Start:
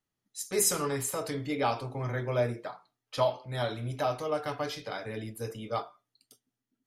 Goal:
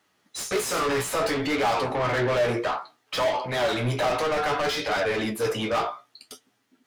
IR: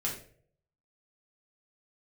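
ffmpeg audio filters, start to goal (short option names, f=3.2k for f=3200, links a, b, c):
-filter_complex "[0:a]asplit=2[a][b];[b]highpass=f=720:p=1,volume=35dB,asoftclip=type=tanh:threshold=-13dB[c];[a][c]amix=inputs=2:normalize=0,lowpass=f=2.8k:p=1,volume=-6dB,flanger=delay=9.3:depth=9.4:regen=37:speed=0.61:shape=triangular"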